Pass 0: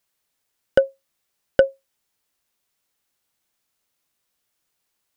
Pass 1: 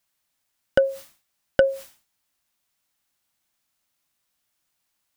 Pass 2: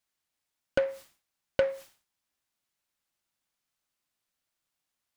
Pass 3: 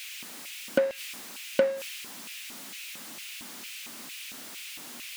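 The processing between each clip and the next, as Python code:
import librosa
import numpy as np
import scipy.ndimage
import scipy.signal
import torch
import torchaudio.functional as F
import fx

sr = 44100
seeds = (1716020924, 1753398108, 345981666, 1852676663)

y1 = fx.peak_eq(x, sr, hz=440.0, db=-9.5, octaves=0.38)
y1 = fx.sustainer(y1, sr, db_per_s=140.0)
y2 = fx.noise_mod_delay(y1, sr, seeds[0], noise_hz=1200.0, depth_ms=0.042)
y2 = F.gain(torch.from_numpy(y2), -7.5).numpy()
y3 = y2 + 0.5 * 10.0 ** (-36.5 / 20.0) * np.sign(y2)
y3 = fx.filter_lfo_highpass(y3, sr, shape='square', hz=2.2, low_hz=230.0, high_hz=2500.0, q=3.4)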